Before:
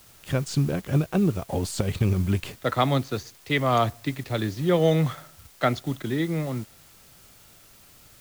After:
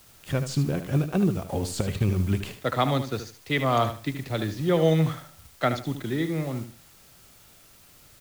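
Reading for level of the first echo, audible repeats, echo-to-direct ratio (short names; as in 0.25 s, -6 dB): -10.0 dB, 3, -9.5 dB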